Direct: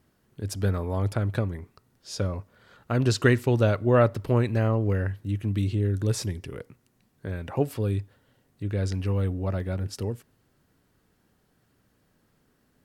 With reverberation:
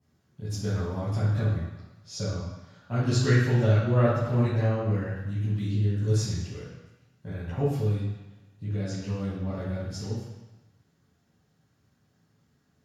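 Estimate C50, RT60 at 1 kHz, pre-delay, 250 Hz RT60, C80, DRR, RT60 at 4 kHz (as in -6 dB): -0.5 dB, 1.1 s, 3 ms, 1.0 s, 2.5 dB, -12.5 dB, 1.1 s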